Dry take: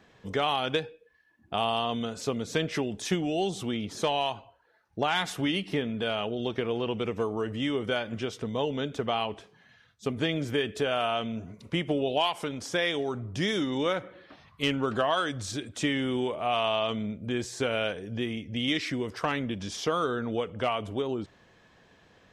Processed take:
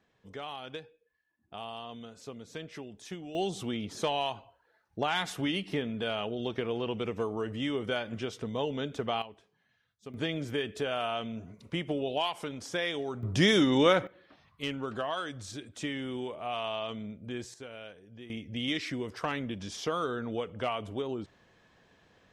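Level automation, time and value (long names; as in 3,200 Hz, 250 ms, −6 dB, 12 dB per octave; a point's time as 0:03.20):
−13.5 dB
from 0:03.35 −3 dB
from 0:09.22 −14.5 dB
from 0:10.14 −4.5 dB
from 0:13.23 +5 dB
from 0:14.07 −7.5 dB
from 0:17.54 −16.5 dB
from 0:18.30 −4 dB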